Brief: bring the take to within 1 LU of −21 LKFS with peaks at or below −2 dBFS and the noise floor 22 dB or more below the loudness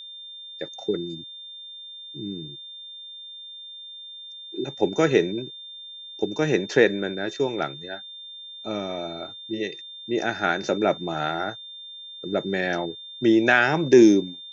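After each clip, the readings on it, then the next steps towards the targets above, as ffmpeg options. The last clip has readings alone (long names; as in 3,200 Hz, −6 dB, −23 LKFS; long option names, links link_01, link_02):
interfering tone 3,600 Hz; level of the tone −38 dBFS; integrated loudness −23.5 LKFS; sample peak −3.5 dBFS; target loudness −21.0 LKFS
→ -af "bandreject=frequency=3600:width=30"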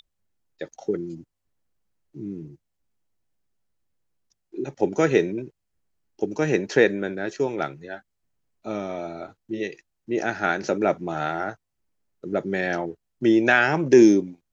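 interfering tone none found; integrated loudness −23.5 LKFS; sample peak −3.5 dBFS; target loudness −21.0 LKFS
→ -af "volume=2.5dB,alimiter=limit=-2dB:level=0:latency=1"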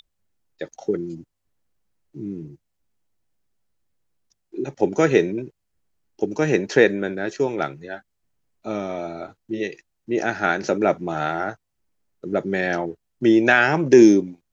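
integrated loudness −21.0 LKFS; sample peak −2.0 dBFS; background noise floor −76 dBFS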